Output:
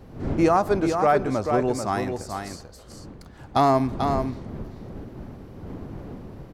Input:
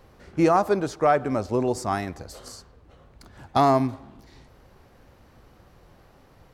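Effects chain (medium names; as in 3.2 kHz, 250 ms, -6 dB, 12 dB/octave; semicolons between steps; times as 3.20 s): wind noise 270 Hz -37 dBFS; delay 440 ms -6 dB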